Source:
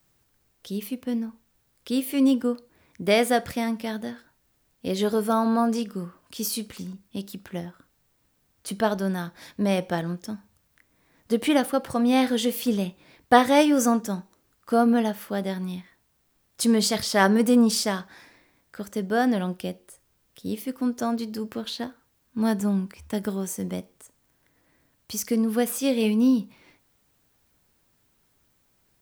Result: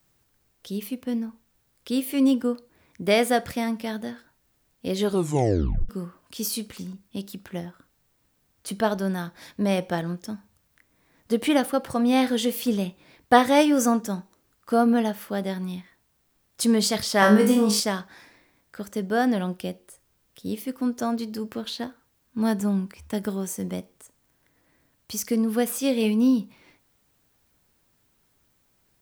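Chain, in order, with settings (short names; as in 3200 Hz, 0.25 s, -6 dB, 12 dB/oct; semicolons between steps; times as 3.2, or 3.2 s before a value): 5.05 tape stop 0.84 s; 17.2–17.8 flutter echo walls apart 3.3 m, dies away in 0.4 s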